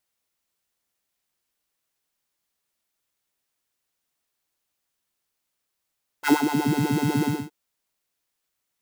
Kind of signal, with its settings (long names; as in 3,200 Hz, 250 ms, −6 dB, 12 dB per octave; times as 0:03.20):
subtractive patch with filter wobble D4, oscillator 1 square, oscillator 2 level −17 dB, sub −3 dB, noise −9.5 dB, filter highpass, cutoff 200 Hz, Q 3.4, filter envelope 2 octaves, filter decay 0.50 s, filter sustain 20%, attack 47 ms, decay 0.14 s, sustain −8 dB, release 0.25 s, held 1.02 s, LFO 8.1 Hz, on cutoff 1.2 octaves